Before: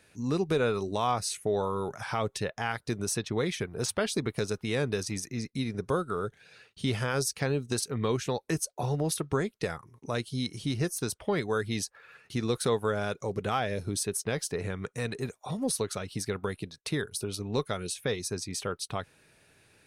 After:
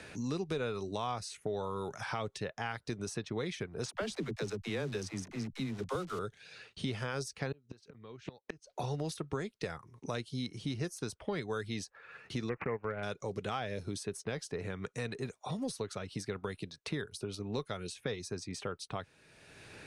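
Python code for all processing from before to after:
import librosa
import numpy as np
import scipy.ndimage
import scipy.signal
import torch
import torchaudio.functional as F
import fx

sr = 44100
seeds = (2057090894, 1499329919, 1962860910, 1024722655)

y = fx.chain(x, sr, fx.delta_hold(step_db=-42.0),
    fx.dispersion(late='lows', ms=50.0, hz=310.0), at=(3.88, 6.19))
y = fx.chain(y, sr, fx.lowpass(hz=3900.0, slope=12),
    fx.gate_flip(shuts_db=-24.0, range_db=-31),
    fx.over_compress(threshold_db=-43.0, ratio=-0.5), at=(7.52, 8.73))
y = fx.chain(y, sr, fx.resample_bad(factor=8, down='none', up='filtered'),
    fx.transient(attack_db=-1, sustain_db=-9), at=(12.49, 13.03))
y = scipy.signal.sosfilt(scipy.signal.butter(2, 7600.0, 'lowpass', fs=sr, output='sos'), y)
y = fx.band_squash(y, sr, depth_pct=70)
y = y * librosa.db_to_amplitude(-7.0)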